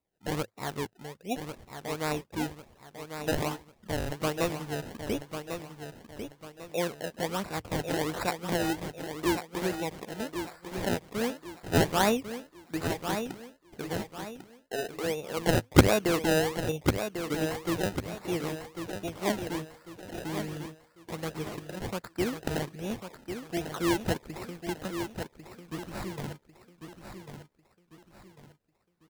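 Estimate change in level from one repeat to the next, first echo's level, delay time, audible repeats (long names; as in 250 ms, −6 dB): −8.5 dB, −8.0 dB, 1,097 ms, 4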